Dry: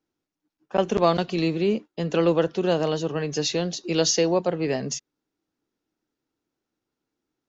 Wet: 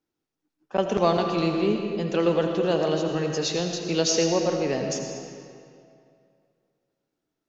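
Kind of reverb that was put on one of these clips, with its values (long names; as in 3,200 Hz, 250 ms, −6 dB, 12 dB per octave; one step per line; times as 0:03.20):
comb and all-pass reverb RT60 2.4 s, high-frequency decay 0.8×, pre-delay 45 ms, DRR 3.5 dB
level −2 dB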